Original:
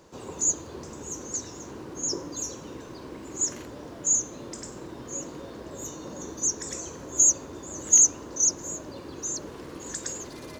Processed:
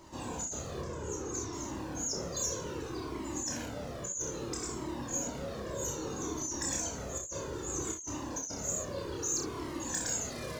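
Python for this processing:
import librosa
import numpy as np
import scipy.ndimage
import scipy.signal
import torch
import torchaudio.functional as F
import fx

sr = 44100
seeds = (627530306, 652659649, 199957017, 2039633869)

y = fx.high_shelf(x, sr, hz=3700.0, db=-10.5, at=(0.81, 1.53))
y = fx.over_compress(y, sr, threshold_db=-32.0, ratio=-1.0)
y = 10.0 ** (-20.5 / 20.0) * np.tanh(y / 10.0 ** (-20.5 / 20.0))
y = fx.room_early_taps(y, sr, ms=(29, 63, 79), db=(-3.0, -7.0, -13.5))
y = fx.comb_cascade(y, sr, direction='falling', hz=0.62)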